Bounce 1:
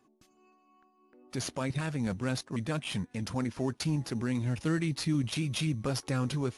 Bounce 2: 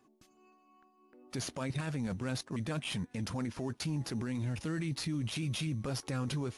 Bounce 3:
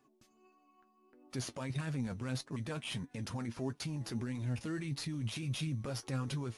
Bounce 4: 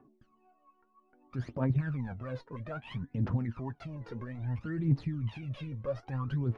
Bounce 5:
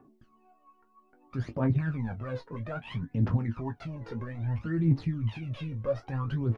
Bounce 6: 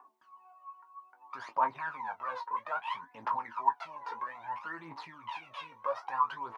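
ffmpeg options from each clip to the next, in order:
ffmpeg -i in.wav -af "alimiter=level_in=4dB:limit=-24dB:level=0:latency=1:release=14,volume=-4dB" out.wav
ffmpeg -i in.wav -af "flanger=delay=6.7:depth=2.6:regen=51:speed=1.6:shape=triangular,volume=1dB" out.wav
ffmpeg -i in.wav -af "aphaser=in_gain=1:out_gain=1:delay=2.2:decay=0.77:speed=0.61:type=triangular,lowpass=1500" out.wav
ffmpeg -i in.wav -af "aecho=1:1:18|30:0.376|0.141,volume=3dB" out.wav
ffmpeg -i in.wav -af "highpass=frequency=970:width_type=q:width=9.5" out.wav

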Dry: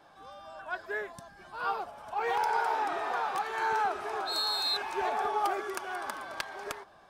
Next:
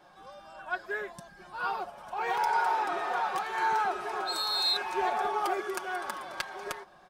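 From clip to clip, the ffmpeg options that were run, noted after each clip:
ffmpeg -i in.wav -af "aecho=1:1:5.5:0.55" out.wav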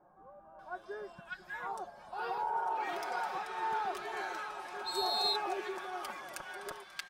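ffmpeg -i in.wav -filter_complex "[0:a]acrossover=split=1300[link_01][link_02];[link_02]adelay=590[link_03];[link_01][link_03]amix=inputs=2:normalize=0,volume=-5dB" out.wav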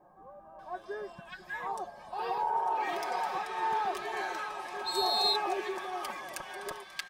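ffmpeg -i in.wav -af "asuperstop=centerf=1400:order=12:qfactor=7.8,volume=4dB" out.wav

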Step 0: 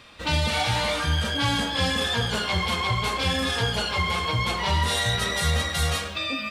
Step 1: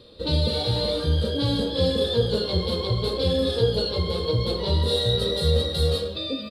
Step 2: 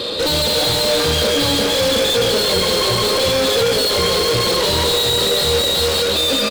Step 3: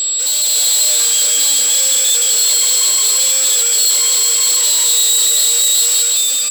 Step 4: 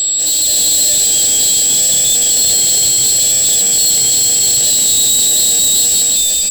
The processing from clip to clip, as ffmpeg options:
ffmpeg -i in.wav -af "firequalizer=gain_entry='entry(260,0);entry(490,10);entry(700,-11);entry(2300,-21);entry(4100,4);entry(6000,-21);entry(9300,-9);entry(14000,-11)':delay=0.05:min_phase=1,volume=2.5dB" out.wav
ffmpeg -i in.wav -filter_complex "[0:a]asplit=2[link_01][link_02];[link_02]highpass=frequency=720:poles=1,volume=41dB,asoftclip=type=tanh:threshold=-8dB[link_03];[link_01][link_03]amix=inputs=2:normalize=0,lowpass=frequency=6600:poles=1,volume=-6dB,asplit=2[link_04][link_05];[link_05]aecho=0:1:368:0.422[link_06];[link_04][link_06]amix=inputs=2:normalize=0,volume=-2.5dB" out.wav
ffmpeg -i in.wav -af "aeval=exprs='val(0)+0.126*sin(2*PI*7700*n/s)':channel_layout=same,aderivative,dynaudnorm=framelen=150:gausssize=7:maxgain=3.5dB,volume=3dB" out.wav
ffmpeg -i in.wav -filter_complex "[0:a]aeval=exprs='0.841*(cos(1*acos(clip(val(0)/0.841,-1,1)))-cos(1*PI/2))+0.075*(cos(5*acos(clip(val(0)/0.841,-1,1)))-cos(5*PI/2))':channel_layout=same,acrossover=split=260|2300[link_01][link_02][link_03];[link_02]acrusher=samples=37:mix=1:aa=0.000001[link_04];[link_01][link_04][link_03]amix=inputs=3:normalize=0" out.wav

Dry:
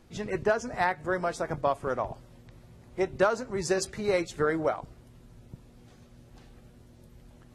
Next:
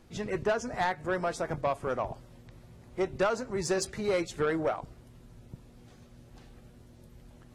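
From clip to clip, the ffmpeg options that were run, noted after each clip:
ffmpeg -i in.wav -af "asoftclip=type=tanh:threshold=-20.5dB" out.wav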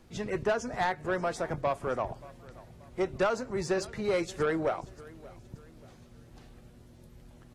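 ffmpeg -i in.wav -filter_complex "[0:a]aecho=1:1:580|1160|1740:0.0891|0.0348|0.0136,acrossover=split=450|4100[link_01][link_02][link_03];[link_03]alimiter=level_in=10dB:limit=-24dB:level=0:latency=1:release=388,volume=-10dB[link_04];[link_01][link_02][link_04]amix=inputs=3:normalize=0" out.wav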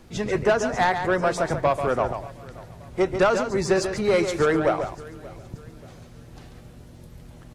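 ffmpeg -i in.wav -af "aecho=1:1:140:0.398,volume=8dB" out.wav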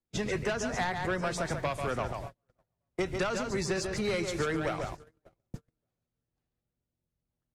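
ffmpeg -i in.wav -filter_complex "[0:a]agate=range=-42dB:threshold=-34dB:ratio=16:detection=peak,acrossover=split=220|1700[link_01][link_02][link_03];[link_01]acompressor=threshold=-36dB:ratio=4[link_04];[link_02]acompressor=threshold=-34dB:ratio=4[link_05];[link_03]acompressor=threshold=-36dB:ratio=4[link_06];[link_04][link_05][link_06]amix=inputs=3:normalize=0" out.wav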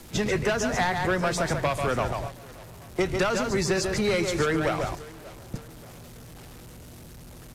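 ffmpeg -i in.wav -af "aeval=exprs='val(0)+0.5*0.00708*sgn(val(0))':channel_layout=same,aresample=32000,aresample=44100,volume=5.5dB" out.wav

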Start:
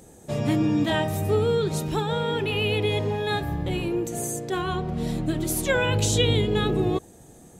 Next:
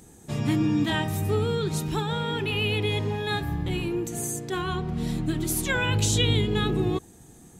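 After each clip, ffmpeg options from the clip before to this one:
ffmpeg -i in.wav -af "equalizer=frequency=570:width_type=o:width=0.63:gain=-11" out.wav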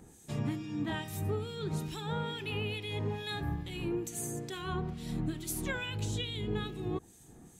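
ffmpeg -i in.wav -filter_complex "[0:a]acompressor=threshold=-27dB:ratio=6,acrossover=split=2100[link_01][link_02];[link_01]aeval=exprs='val(0)*(1-0.7/2+0.7/2*cos(2*PI*2.3*n/s))':channel_layout=same[link_03];[link_02]aeval=exprs='val(0)*(1-0.7/2-0.7/2*cos(2*PI*2.3*n/s))':channel_layout=same[link_04];[link_03][link_04]amix=inputs=2:normalize=0,volume=-2dB" out.wav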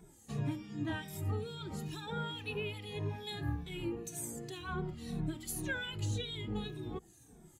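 ffmpeg -i in.wav -filter_complex "[0:a]afftfilt=real='re*pow(10,7/40*sin(2*PI*(1.6*log(max(b,1)*sr/1024/100)/log(2)-(-1.9)*(pts-256)/sr)))':imag='im*pow(10,7/40*sin(2*PI*(1.6*log(max(b,1)*sr/1024/100)/log(2)-(-1.9)*(pts-256)/sr)))':win_size=1024:overlap=0.75,asplit=2[link_01][link_02];[link_02]adelay=2.3,afreqshift=-2.7[link_03];[link_01][link_03]amix=inputs=2:normalize=1,volume=-1dB" out.wav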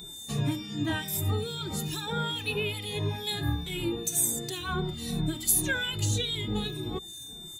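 ffmpeg -i in.wav -af "aeval=exprs='val(0)+0.00224*sin(2*PI*3600*n/s)':channel_layout=same,crystalizer=i=2:c=0,volume=7dB" out.wav

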